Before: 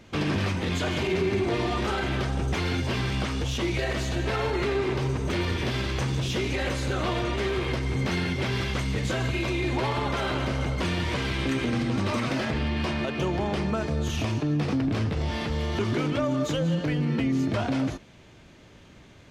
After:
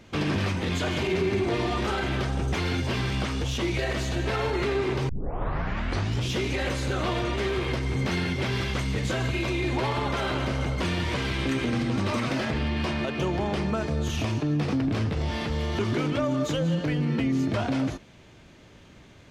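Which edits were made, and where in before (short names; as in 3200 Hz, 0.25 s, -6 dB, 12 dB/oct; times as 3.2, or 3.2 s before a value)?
5.09 tape start 1.22 s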